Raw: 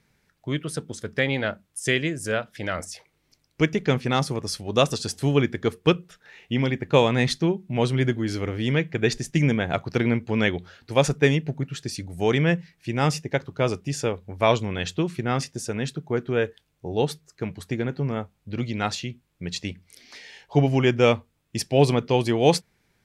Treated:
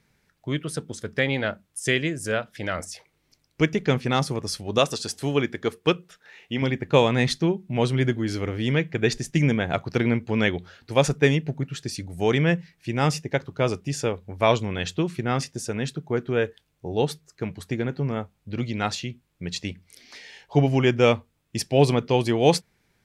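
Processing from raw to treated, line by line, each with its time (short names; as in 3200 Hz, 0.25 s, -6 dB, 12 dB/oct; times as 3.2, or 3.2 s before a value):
4.78–6.62 low shelf 180 Hz -9.5 dB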